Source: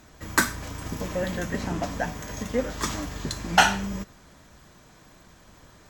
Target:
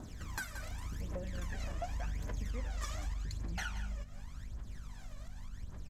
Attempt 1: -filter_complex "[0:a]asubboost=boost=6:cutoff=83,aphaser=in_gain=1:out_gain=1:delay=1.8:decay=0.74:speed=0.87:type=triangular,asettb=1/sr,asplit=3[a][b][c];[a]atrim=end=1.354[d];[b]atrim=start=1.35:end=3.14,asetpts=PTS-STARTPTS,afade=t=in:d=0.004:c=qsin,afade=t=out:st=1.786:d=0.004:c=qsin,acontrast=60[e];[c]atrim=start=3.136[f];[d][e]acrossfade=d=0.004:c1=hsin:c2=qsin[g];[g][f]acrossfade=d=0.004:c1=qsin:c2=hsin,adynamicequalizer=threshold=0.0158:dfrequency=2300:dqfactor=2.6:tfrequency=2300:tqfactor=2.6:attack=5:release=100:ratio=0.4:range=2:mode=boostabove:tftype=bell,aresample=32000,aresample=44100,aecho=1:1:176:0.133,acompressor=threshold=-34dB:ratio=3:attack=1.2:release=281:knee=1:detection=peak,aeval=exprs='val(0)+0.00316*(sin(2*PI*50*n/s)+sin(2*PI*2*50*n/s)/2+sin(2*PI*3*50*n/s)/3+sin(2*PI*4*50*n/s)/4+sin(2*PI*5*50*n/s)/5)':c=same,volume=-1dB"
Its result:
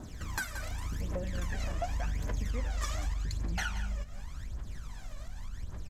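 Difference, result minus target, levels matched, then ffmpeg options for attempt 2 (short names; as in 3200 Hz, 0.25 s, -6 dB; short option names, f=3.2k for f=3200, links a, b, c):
compressor: peak gain reduction -5.5 dB
-filter_complex "[0:a]asubboost=boost=6:cutoff=83,aphaser=in_gain=1:out_gain=1:delay=1.8:decay=0.74:speed=0.87:type=triangular,asettb=1/sr,asplit=3[a][b][c];[a]atrim=end=1.354[d];[b]atrim=start=1.35:end=3.14,asetpts=PTS-STARTPTS,afade=t=in:d=0.004:c=qsin,afade=t=out:st=1.786:d=0.004:c=qsin,acontrast=60[e];[c]atrim=start=3.136[f];[d][e]acrossfade=d=0.004:c1=hsin:c2=qsin[g];[g][f]acrossfade=d=0.004:c1=qsin:c2=hsin,adynamicequalizer=threshold=0.0158:dfrequency=2300:dqfactor=2.6:tfrequency=2300:tqfactor=2.6:attack=5:release=100:ratio=0.4:range=2:mode=boostabove:tftype=bell,aresample=32000,aresample=44100,aecho=1:1:176:0.133,acompressor=threshold=-42dB:ratio=3:attack=1.2:release=281:knee=1:detection=peak,aeval=exprs='val(0)+0.00316*(sin(2*PI*50*n/s)+sin(2*PI*2*50*n/s)/2+sin(2*PI*3*50*n/s)/3+sin(2*PI*4*50*n/s)/4+sin(2*PI*5*50*n/s)/5)':c=same,volume=-1dB"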